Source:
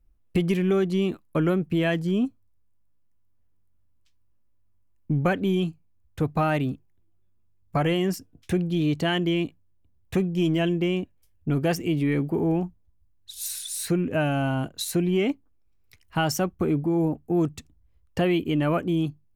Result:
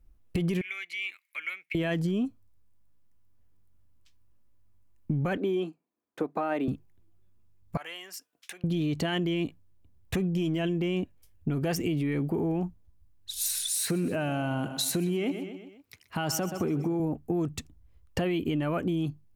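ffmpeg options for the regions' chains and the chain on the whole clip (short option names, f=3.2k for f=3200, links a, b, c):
-filter_complex "[0:a]asettb=1/sr,asplit=3[a][b][c];[a]atrim=end=0.614[d];[b]atrim=start=0.61:end=1.75,asetpts=PTS-STARTPTS,afade=t=in:d=0.004:c=qsin,afade=t=out:st=1.136:d=0.004:c=qsin,acompressor=threshold=-52dB:ratio=1.5:attack=3.2:release=140:knee=1:detection=peak,highpass=f=2.2k:t=q:w=14[e];[c]atrim=start=1.746[f];[d][e]acrossfade=d=0.004:c1=hsin:c2=qsin[g];[g][f]acrossfade=d=0.004:c1=qsin:c2=hsin,asettb=1/sr,asplit=3[h][i][j];[h]atrim=end=5.374[k];[i]atrim=start=5.37:end=6.68,asetpts=PTS-STARTPTS,afade=t=in:d=0.004:c=qsin,afade=t=out:st=1.306:d=0.004:c=qsin,highpass=f=270:w=0.5412,highpass=f=270:w=1.3066,highshelf=f=2.3k:g=-12,bandreject=f=2.9k:w=26[l];[j]atrim=start=6.676[m];[k][l]acrossfade=d=0.004:c1=hsin:c2=qsin[n];[n][m]acrossfade=d=0.004:c1=qsin:c2=hsin,asettb=1/sr,asplit=3[o][p][q];[o]atrim=end=7.774[r];[p]atrim=start=7.77:end=8.64,asetpts=PTS-STARTPTS,afade=t=in:d=0.004:c=qsin,afade=t=out:st=0.866:d=0.004:c=qsin,acompressor=threshold=-42dB:ratio=2:attack=3.2:release=140:knee=1:detection=peak,highpass=1.1k[s];[q]atrim=start=8.636[t];[r][s]acrossfade=d=0.004:c1=hsin:c2=qsin[u];[u][t]acrossfade=d=0.004:c1=qsin:c2=hsin,asettb=1/sr,asplit=3[v][w][x];[v]atrim=end=13.694[y];[w]atrim=start=13.69:end=17,asetpts=PTS-STARTPTS,afade=t=in:d=0.004:c=qsin,afade=t=out:st=3.306:d=0.004:c=qsin,highpass=120,aecho=1:1:125|250|375|500:0.158|0.0792|0.0396|0.0198,atrim=end_sample=145971[z];[x]atrim=start=16.996[aa];[y][z]acrossfade=d=0.004:c1=hsin:c2=qsin[ab];[ab][aa]acrossfade=d=0.004:c1=qsin:c2=hsin,alimiter=limit=-21dB:level=0:latency=1,acompressor=threshold=-29dB:ratio=6,volume=4dB"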